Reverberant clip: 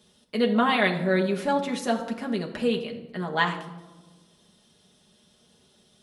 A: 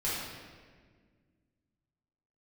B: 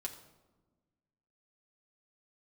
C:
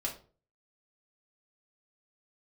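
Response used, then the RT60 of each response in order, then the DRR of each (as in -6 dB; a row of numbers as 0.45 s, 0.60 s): B; 1.7 s, 1.2 s, 0.40 s; -9.5 dB, 0.0 dB, -2.5 dB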